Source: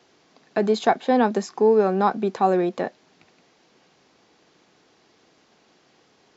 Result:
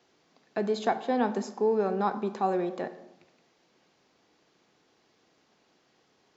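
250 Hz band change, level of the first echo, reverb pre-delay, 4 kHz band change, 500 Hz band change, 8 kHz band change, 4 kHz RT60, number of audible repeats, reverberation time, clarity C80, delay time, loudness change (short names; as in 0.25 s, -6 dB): -7.5 dB, none, 23 ms, -8.0 dB, -8.0 dB, n/a, 0.55 s, none, 0.90 s, 15.0 dB, none, -8.0 dB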